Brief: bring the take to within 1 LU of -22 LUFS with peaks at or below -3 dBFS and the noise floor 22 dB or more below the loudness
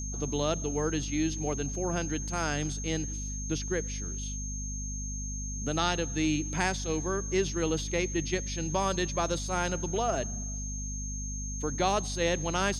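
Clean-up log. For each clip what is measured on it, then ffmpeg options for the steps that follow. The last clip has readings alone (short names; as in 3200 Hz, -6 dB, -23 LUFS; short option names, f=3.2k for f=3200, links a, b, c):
hum 50 Hz; harmonics up to 250 Hz; hum level -34 dBFS; steady tone 6400 Hz; tone level -38 dBFS; loudness -31.0 LUFS; peak -13.0 dBFS; loudness target -22.0 LUFS
-> -af "bandreject=f=50:t=h:w=6,bandreject=f=100:t=h:w=6,bandreject=f=150:t=h:w=6,bandreject=f=200:t=h:w=6,bandreject=f=250:t=h:w=6"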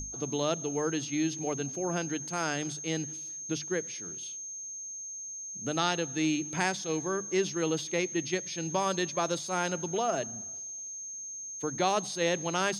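hum none; steady tone 6400 Hz; tone level -38 dBFS
-> -af "bandreject=f=6.4k:w=30"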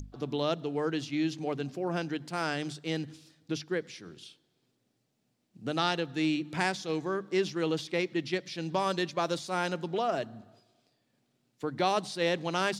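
steady tone none; loudness -32.0 LUFS; peak -14.0 dBFS; loudness target -22.0 LUFS
-> -af "volume=10dB"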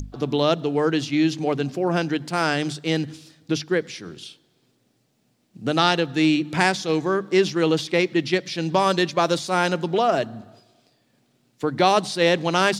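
loudness -22.0 LUFS; peak -4.0 dBFS; noise floor -66 dBFS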